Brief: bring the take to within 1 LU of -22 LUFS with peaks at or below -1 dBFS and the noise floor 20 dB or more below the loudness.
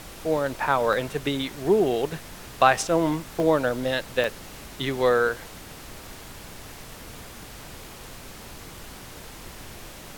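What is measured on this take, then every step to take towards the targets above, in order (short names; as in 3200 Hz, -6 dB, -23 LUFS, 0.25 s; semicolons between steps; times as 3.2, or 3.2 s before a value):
dropouts 6; longest dropout 1.2 ms; noise floor -43 dBFS; noise floor target -44 dBFS; loudness -24.0 LUFS; peak -3.5 dBFS; loudness target -22.0 LUFS
-> interpolate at 0.37/0.93/1.56/3.4/4.24/5, 1.2 ms; noise print and reduce 6 dB; gain +2 dB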